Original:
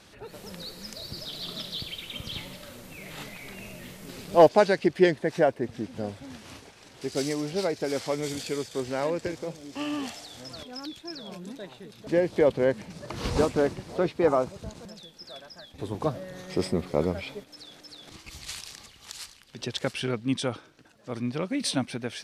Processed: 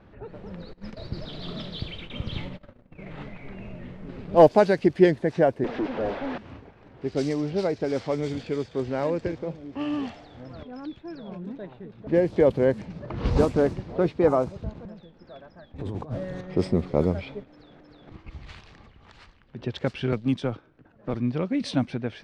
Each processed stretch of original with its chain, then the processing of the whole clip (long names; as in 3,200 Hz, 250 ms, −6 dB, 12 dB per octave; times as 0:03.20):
0:00.73–0:03.14: noise gate −43 dBFS, range −20 dB + leveller curve on the samples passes 1
0:05.64–0:06.38: band-pass filter 310–6,600 Hz + mid-hump overdrive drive 32 dB, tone 1,200 Hz, clips at −21 dBFS
0:15.76–0:16.41: parametric band 8,900 Hz +14.5 dB 1.2 octaves + compressor whose output falls as the input rises −36 dBFS
0:20.12–0:21.14: mu-law and A-law mismatch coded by A + multiband upward and downward compressor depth 70%
whole clip: low-pass that shuts in the quiet parts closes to 1,700 Hz, open at −19.5 dBFS; spectral tilt −2 dB per octave